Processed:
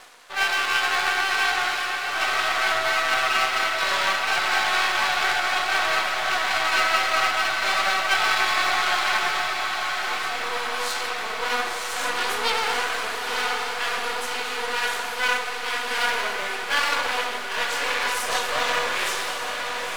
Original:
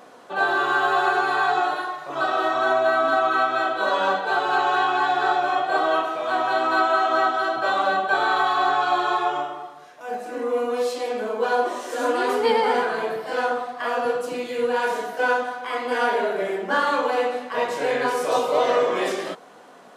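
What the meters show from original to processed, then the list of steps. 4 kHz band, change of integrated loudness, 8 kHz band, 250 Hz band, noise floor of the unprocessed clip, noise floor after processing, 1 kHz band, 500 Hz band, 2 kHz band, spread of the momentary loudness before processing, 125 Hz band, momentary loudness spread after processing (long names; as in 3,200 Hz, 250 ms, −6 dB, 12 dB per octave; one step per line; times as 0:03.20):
+8.5 dB, −0.5 dB, +11.5 dB, −11.0 dB, −46 dBFS, −30 dBFS, −3.5 dB, −9.5 dB, +3.0 dB, 7 LU, can't be measured, 6 LU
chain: half-wave rectification
tilt shelving filter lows −7.5 dB, about 1,100 Hz
feedback delay with all-pass diffusion 989 ms, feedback 69%, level −5.5 dB
reversed playback
upward compression, threshold −35 dBFS
reversed playback
low-shelf EQ 460 Hz −9 dB
level +2.5 dB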